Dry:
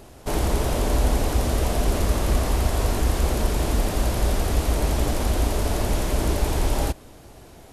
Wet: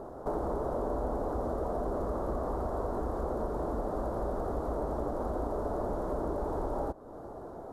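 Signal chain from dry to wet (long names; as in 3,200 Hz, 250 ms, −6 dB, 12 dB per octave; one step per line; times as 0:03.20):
drawn EQ curve 100 Hz 0 dB, 500 Hz +13 dB, 1,300 Hz +9 dB, 2,500 Hz −22 dB, 3,800 Hz −14 dB
downward compressor 2.5 to 1, threshold −30 dBFS, peak gain reduction 12 dB
level −5.5 dB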